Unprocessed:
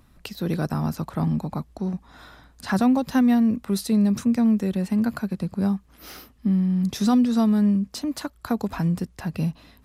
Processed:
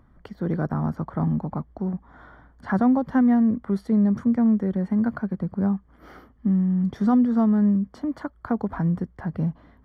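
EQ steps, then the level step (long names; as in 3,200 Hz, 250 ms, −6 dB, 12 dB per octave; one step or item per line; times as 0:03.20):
Savitzky-Golay smoothing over 41 samples
0.0 dB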